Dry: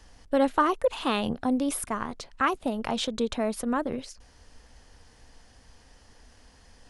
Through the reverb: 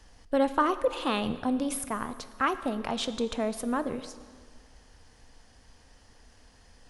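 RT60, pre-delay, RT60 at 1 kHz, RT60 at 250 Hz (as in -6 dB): 1.8 s, 7 ms, 1.8 s, 1.7 s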